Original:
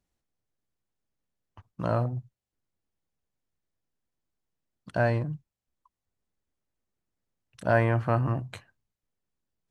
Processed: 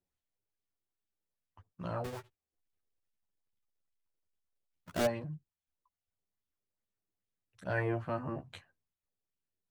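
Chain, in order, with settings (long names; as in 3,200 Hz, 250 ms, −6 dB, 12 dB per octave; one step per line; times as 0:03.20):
0:02.04–0:05.06: each half-wave held at its own peak
multi-voice chorus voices 2, 0.29 Hz, delay 11 ms, depth 1.5 ms
auto-filter bell 2.4 Hz 370–3,400 Hz +8 dB
level −8 dB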